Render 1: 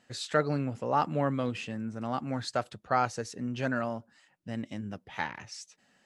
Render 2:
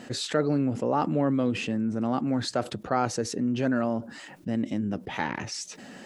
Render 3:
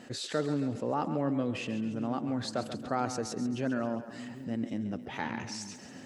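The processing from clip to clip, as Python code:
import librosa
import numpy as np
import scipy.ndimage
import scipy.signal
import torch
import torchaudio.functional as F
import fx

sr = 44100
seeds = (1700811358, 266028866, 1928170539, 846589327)

y1 = fx.peak_eq(x, sr, hz=300.0, db=10.5, octaves=1.9)
y1 = fx.env_flatten(y1, sr, amount_pct=50)
y1 = y1 * librosa.db_to_amplitude(-5.0)
y2 = fx.echo_split(y1, sr, split_hz=360.0, low_ms=768, high_ms=136, feedback_pct=52, wet_db=-11)
y2 = y2 * librosa.db_to_amplitude(-6.0)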